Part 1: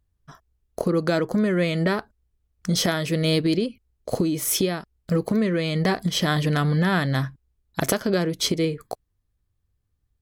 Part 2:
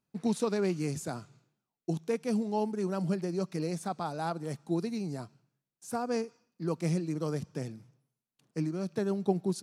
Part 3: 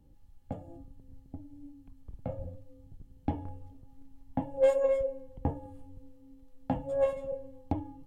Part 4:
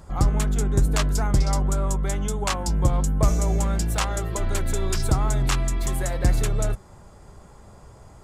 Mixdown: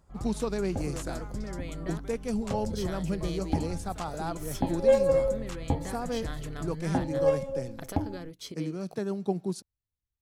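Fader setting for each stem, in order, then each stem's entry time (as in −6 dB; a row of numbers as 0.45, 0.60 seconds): −18.5, −1.0, +3.0, −18.0 decibels; 0.00, 0.00, 0.25, 0.00 seconds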